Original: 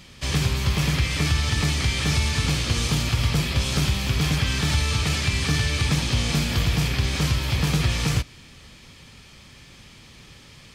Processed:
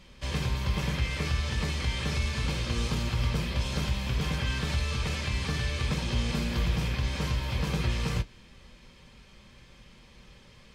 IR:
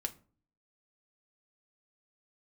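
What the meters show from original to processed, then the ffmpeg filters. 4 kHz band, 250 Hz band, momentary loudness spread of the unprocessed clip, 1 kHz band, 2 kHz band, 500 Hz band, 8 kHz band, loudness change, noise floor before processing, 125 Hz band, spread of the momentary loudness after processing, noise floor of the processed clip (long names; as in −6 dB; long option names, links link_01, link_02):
−9.5 dB, −7.0 dB, 1 LU, −6.0 dB, −7.5 dB, −4.5 dB, −12.5 dB, −7.5 dB, −48 dBFS, −7.5 dB, 2 LU, −54 dBFS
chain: -filter_complex "[0:a]highshelf=frequency=3500:gain=-8.5[link_01];[1:a]atrim=start_sample=2205,atrim=end_sample=3528,asetrate=79380,aresample=44100[link_02];[link_01][link_02]afir=irnorm=-1:irlink=0"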